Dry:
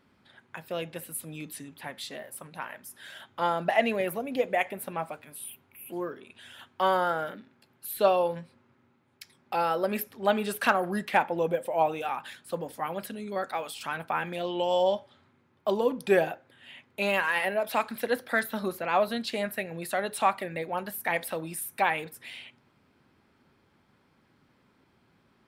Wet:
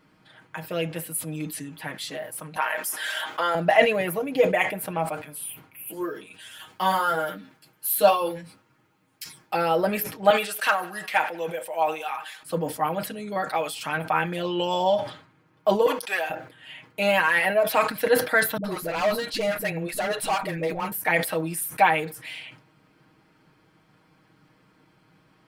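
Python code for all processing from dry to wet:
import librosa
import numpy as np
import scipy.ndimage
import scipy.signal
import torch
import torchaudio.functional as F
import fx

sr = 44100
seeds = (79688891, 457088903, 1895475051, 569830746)

y = fx.chain(x, sr, fx.highpass(hz=510.0, slope=12),
    fx.env_flatten(amount_pct=50), at=(2.56, 3.55))
y = fx.chain(y, sr, fx.high_shelf(hz=4800.0, db=11.5),
    fx.ensemble(), at=(5.86, 9.53))
y = fx.chain(y, sr, fx.highpass(hz=1500.0, slope=6),
    fx.echo_feedback(ms=95, feedback_pct=60, wet_db=-23), at=(10.3, 12.43))
y = fx.chain(y, sr, fx.highpass(hz=1000.0, slope=12),
    fx.transformer_sat(knee_hz=1200.0), at=(15.86, 16.3))
y = fx.chain(y, sr, fx.clip_hard(threshold_db=-26.5),
    fx.dispersion(late='highs', ms=71.0, hz=330.0), at=(18.57, 20.92))
y = fx.notch(y, sr, hz=3700.0, q=16.0)
y = y + 0.8 * np.pad(y, (int(6.4 * sr / 1000.0), 0))[:len(y)]
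y = fx.sustainer(y, sr, db_per_s=120.0)
y = F.gain(torch.from_numpy(y), 3.5).numpy()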